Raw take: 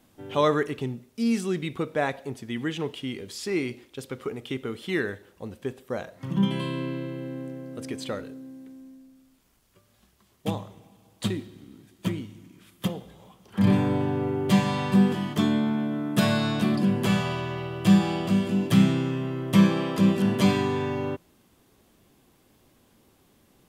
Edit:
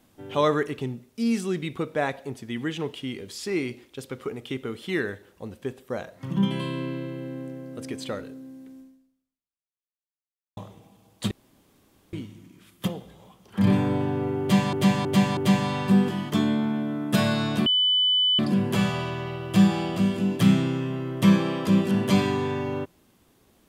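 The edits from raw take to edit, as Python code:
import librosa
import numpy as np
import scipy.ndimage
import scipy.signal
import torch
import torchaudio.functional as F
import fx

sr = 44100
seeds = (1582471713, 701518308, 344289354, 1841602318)

y = fx.edit(x, sr, fx.fade_out_span(start_s=8.8, length_s=1.77, curve='exp'),
    fx.room_tone_fill(start_s=11.31, length_s=0.82),
    fx.repeat(start_s=14.41, length_s=0.32, count=4),
    fx.insert_tone(at_s=16.7, length_s=0.73, hz=3000.0, db=-18.0), tone=tone)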